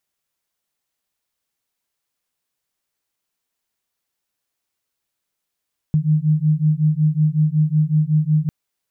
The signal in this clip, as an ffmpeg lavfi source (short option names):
-f lavfi -i "aevalsrc='0.141*(sin(2*PI*151*t)+sin(2*PI*156.4*t))':d=2.55:s=44100"